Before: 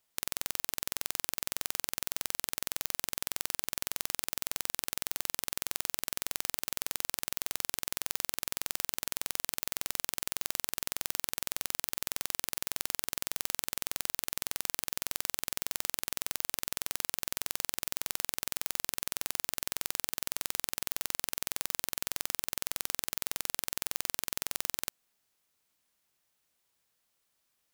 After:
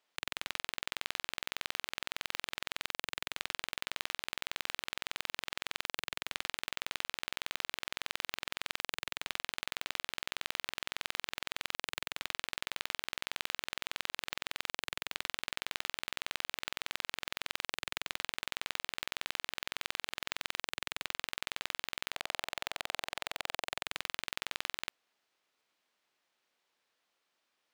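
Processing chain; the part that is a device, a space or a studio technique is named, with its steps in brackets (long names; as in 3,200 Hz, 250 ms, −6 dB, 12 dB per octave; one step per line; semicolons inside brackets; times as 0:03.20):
early digital voice recorder (band-pass filter 290–4,000 Hz; one scale factor per block 3 bits)
0:22.12–0:23.83: parametric band 690 Hz +8.5 dB 0.91 octaves
level +3 dB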